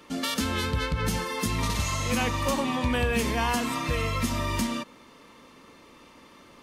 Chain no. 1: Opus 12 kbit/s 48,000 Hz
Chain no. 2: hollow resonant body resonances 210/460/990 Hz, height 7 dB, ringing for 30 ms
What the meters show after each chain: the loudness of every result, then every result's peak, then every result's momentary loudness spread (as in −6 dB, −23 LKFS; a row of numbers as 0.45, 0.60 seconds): −28.5, −24.5 LKFS; −14.0, −10.0 dBFS; 3, 4 LU